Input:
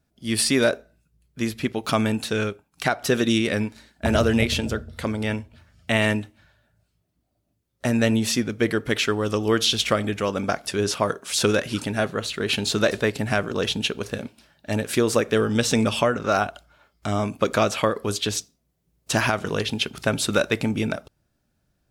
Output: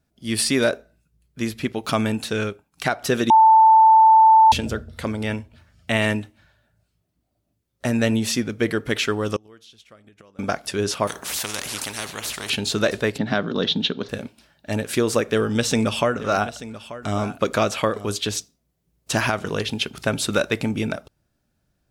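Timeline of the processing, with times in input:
0:03.30–0:04.52: beep over 885 Hz −8.5 dBFS
0:09.36–0:10.39: gate with flip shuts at −17 dBFS, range −28 dB
0:11.07–0:12.50: every bin compressed towards the loudest bin 4 to 1
0:13.18–0:14.09: loudspeaker in its box 150–4,800 Hz, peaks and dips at 170 Hz +9 dB, 260 Hz +7 dB, 2,500 Hz −8 dB, 3,700 Hz +9 dB
0:15.23–0:18.05: single-tap delay 885 ms −15 dB

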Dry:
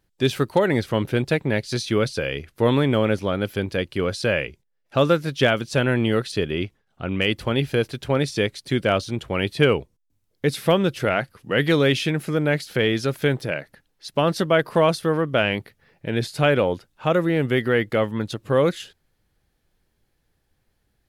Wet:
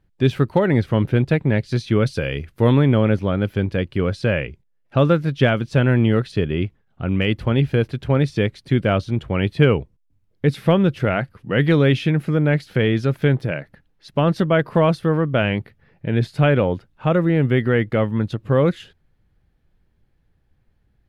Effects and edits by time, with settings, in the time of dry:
0:02.06–0:02.72: high-shelf EQ 5,000 Hz +9.5 dB
whole clip: bass and treble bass +8 dB, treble −12 dB

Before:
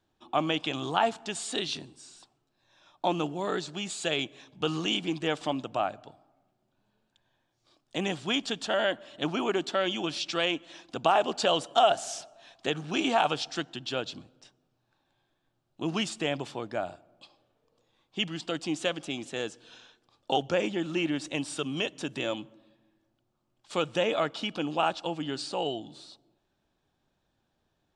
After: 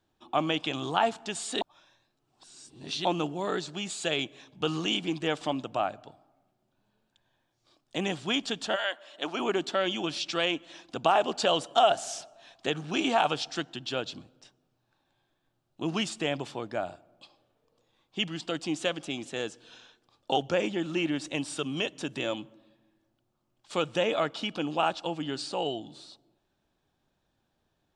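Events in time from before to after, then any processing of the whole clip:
0:01.61–0:03.05: reverse
0:08.75–0:09.39: high-pass filter 1,100 Hz → 320 Hz

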